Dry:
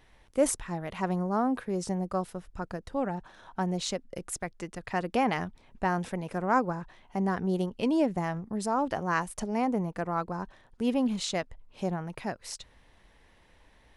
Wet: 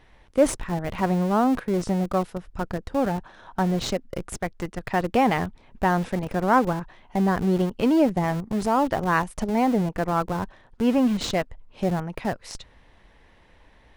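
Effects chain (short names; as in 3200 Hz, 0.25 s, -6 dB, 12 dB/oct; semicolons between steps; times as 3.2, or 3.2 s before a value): high shelf 6100 Hz -11 dB; in parallel at -9 dB: Schmitt trigger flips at -33 dBFS; on the sum: gain +5.5 dB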